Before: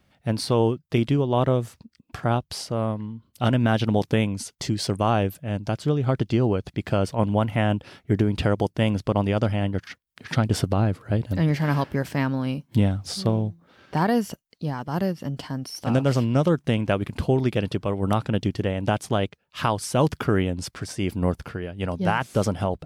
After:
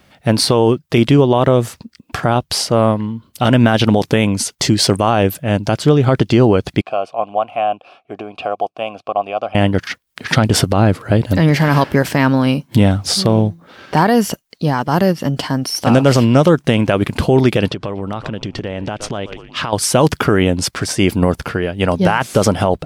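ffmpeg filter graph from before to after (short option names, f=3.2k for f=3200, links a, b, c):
-filter_complex "[0:a]asettb=1/sr,asplit=3[a][b][c];[a]atrim=end=6.814[d];[b]atrim=start=6.81:end=9.55,asetpts=PTS-STARTPTS,afade=t=in:d=0.004:c=qsin,afade=t=out:st=2.736:d=0.004:c=qsin,asplit=3[e][f][g];[e]bandpass=f=730:t=q:w=8,volume=0dB[h];[f]bandpass=f=1.09k:t=q:w=8,volume=-6dB[i];[g]bandpass=f=2.44k:t=q:w=8,volume=-9dB[j];[h][i][j]amix=inputs=3:normalize=0,highshelf=f=4.2k:g=5[k];[c]atrim=start=9.546[l];[d][k]acrossfade=d=0.004:c1=hsin:c2=qsin[m];[m][l]acrossfade=d=0.004:c1=qsin:c2=hsin,asettb=1/sr,asplit=3[n][o][p];[n]atrim=end=17.684[q];[o]atrim=start=17.68:end=19.73,asetpts=PTS-STARTPTS,afade=t=in:d=0.004:c=qsin,afade=t=out:st=2.046:d=0.004:c=qsin,lowpass=5.8k,asplit=4[r][s][t][u];[s]adelay=119,afreqshift=-120,volume=-21dB[v];[t]adelay=238,afreqshift=-240,volume=-27.4dB[w];[u]adelay=357,afreqshift=-360,volume=-33.8dB[x];[r][v][w][x]amix=inputs=4:normalize=0,atrim=end_sample=90405,acompressor=threshold=-31dB:ratio=16:attack=3.2:release=140:knee=1:detection=peak[y];[p]atrim=start=19.726[z];[q][y]acrossfade=d=0.004:c1=hsin:c2=qsin[aa];[aa][z]acrossfade=d=0.004:c1=qsin:c2=hsin,lowshelf=f=190:g=-7,alimiter=level_in=16dB:limit=-1dB:release=50:level=0:latency=1,volume=-1dB"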